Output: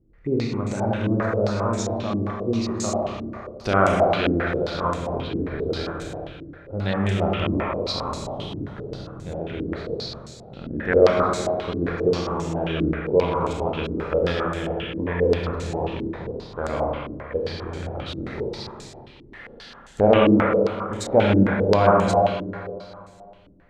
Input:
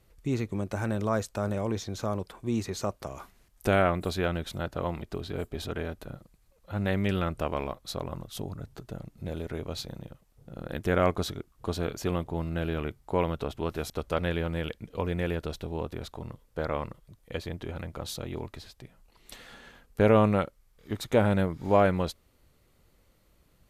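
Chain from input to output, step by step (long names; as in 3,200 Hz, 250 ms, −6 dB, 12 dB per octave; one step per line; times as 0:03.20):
four-comb reverb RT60 2.3 s, combs from 27 ms, DRR −3 dB
low-pass on a step sequencer 7.5 Hz 300–7,400 Hz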